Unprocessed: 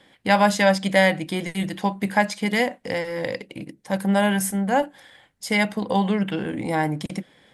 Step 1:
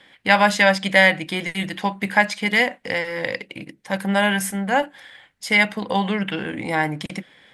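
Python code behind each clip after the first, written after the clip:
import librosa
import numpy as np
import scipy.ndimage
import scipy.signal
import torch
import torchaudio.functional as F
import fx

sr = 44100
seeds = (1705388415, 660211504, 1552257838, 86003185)

y = fx.peak_eq(x, sr, hz=2200.0, db=9.0, octaves=2.2)
y = F.gain(torch.from_numpy(y), -2.0).numpy()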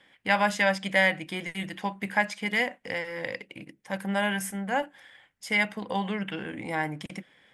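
y = fx.peak_eq(x, sr, hz=4100.0, db=-6.0, octaves=0.34)
y = F.gain(torch.from_numpy(y), -8.0).numpy()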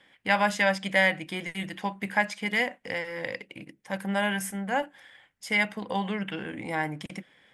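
y = x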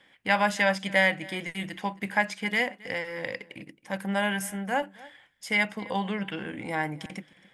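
y = x + 10.0 ** (-21.5 / 20.0) * np.pad(x, (int(270 * sr / 1000.0), 0))[:len(x)]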